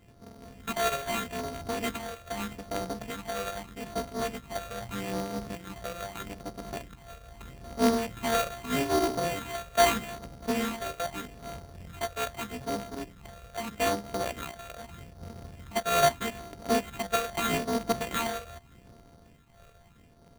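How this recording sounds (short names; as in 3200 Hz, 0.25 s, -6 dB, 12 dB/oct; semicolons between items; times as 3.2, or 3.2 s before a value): a buzz of ramps at a fixed pitch in blocks of 64 samples; phasing stages 8, 0.8 Hz, lowest notch 260–3300 Hz; aliases and images of a low sample rate 5200 Hz, jitter 0%; noise-modulated level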